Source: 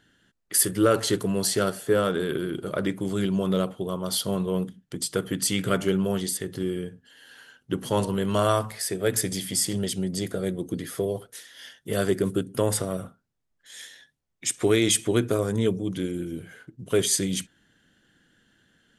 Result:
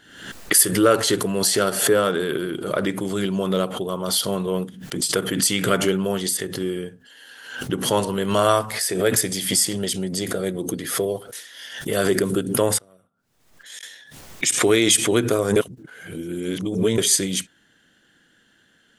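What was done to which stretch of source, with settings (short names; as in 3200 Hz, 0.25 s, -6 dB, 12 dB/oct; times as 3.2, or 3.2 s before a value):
12.78–13.83 flipped gate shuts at -32 dBFS, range -27 dB
15.56–16.98 reverse
whole clip: low shelf 210 Hz -9.5 dB; backwards sustainer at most 73 dB/s; gain +5.5 dB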